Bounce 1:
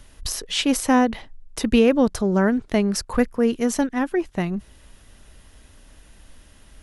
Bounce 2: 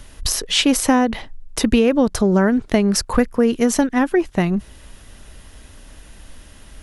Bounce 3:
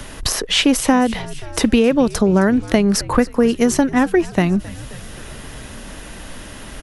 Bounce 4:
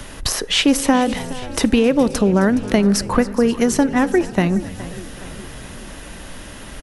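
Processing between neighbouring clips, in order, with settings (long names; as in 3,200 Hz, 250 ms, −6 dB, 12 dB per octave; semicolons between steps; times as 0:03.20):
downward compressor, threshold −18 dBFS, peak gain reduction 7 dB; level +7 dB
echo with shifted repeats 264 ms, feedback 59%, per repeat −80 Hz, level −20.5 dB; multiband upward and downward compressor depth 40%; level +1.5 dB
repeating echo 418 ms, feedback 52%, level −17 dB; on a send at −17.5 dB: convolution reverb RT60 1.4 s, pre-delay 3 ms; on the sum: level −1 dB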